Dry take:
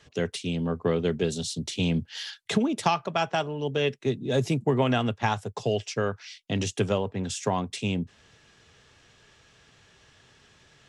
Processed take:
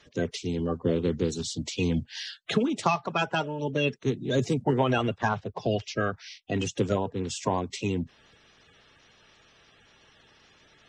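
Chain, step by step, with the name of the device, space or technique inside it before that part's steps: clip after many re-uploads (LPF 8000 Hz 24 dB/oct; bin magnitudes rounded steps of 30 dB); 5.28–6.41 LPF 4000 Hz -> 8500 Hz 24 dB/oct

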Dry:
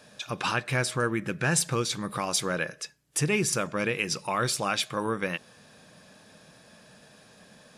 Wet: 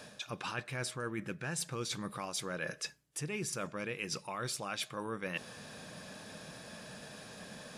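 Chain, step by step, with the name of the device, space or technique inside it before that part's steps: compression on the reversed sound (reverse; compressor 6:1, threshold -42 dBFS, peak gain reduction 19.5 dB; reverse); gain +5 dB

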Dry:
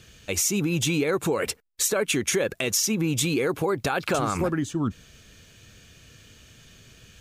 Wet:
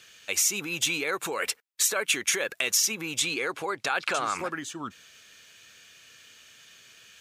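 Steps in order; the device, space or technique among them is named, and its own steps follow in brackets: 3.18–4.51 LPF 8900 Hz 12 dB/oct; filter by subtraction (in parallel: LPF 1700 Hz 12 dB/oct + phase invert)

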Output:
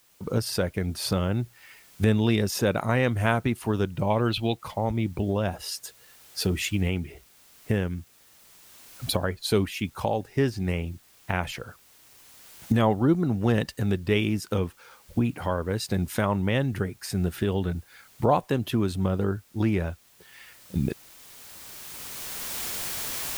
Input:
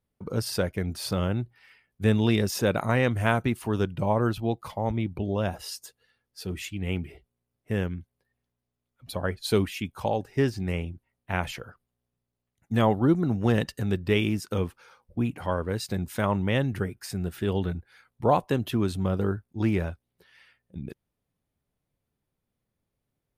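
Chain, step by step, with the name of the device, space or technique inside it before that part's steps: 4.1–4.57 band shelf 3100 Hz +12.5 dB 1.2 oct; cheap recorder with automatic gain (white noise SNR 34 dB; recorder AGC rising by 12 dB/s)

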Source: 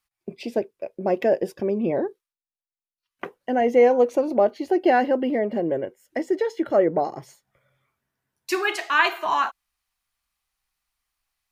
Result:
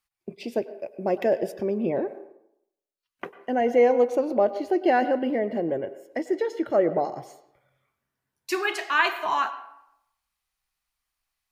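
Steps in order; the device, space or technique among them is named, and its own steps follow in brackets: filtered reverb send (on a send: HPF 290 Hz 12 dB/oct + LPF 5200 Hz + reverb RT60 0.80 s, pre-delay 92 ms, DRR 13 dB); 0.51–1.9 on the sum: high shelf 8100 Hz +5.5 dB; gain -2.5 dB

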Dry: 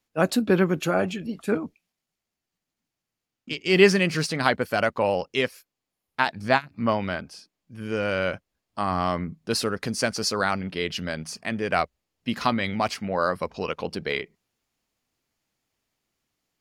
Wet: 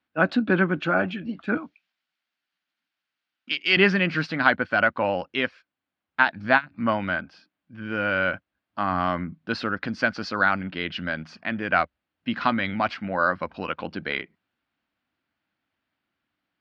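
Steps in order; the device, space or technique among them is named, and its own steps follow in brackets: 1.57–3.77 tilt +4 dB/oct; guitar cabinet (speaker cabinet 76–3700 Hz, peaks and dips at 130 Hz -6 dB, 290 Hz +4 dB, 430 Hz -9 dB, 1500 Hz +8 dB)

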